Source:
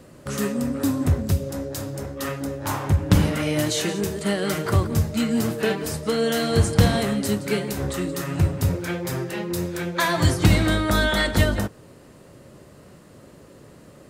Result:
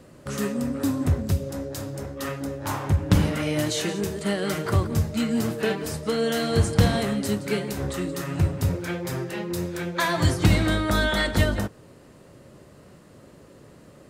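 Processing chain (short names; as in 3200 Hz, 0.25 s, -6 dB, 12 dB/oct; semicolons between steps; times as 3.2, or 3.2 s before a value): high shelf 9100 Hz -3.5 dB; gain -2 dB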